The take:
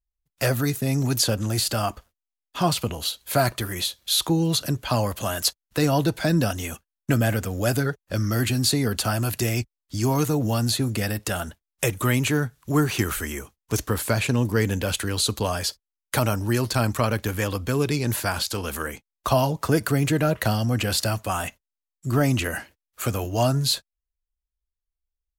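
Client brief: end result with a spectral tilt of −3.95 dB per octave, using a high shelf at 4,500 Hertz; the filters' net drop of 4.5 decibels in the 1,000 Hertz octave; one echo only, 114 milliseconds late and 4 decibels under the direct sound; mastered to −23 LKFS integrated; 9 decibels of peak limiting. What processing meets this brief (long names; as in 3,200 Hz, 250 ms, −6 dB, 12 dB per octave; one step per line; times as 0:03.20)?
parametric band 1,000 Hz −7 dB
high-shelf EQ 4,500 Hz +7 dB
brickwall limiter −13 dBFS
single-tap delay 114 ms −4 dB
level +0.5 dB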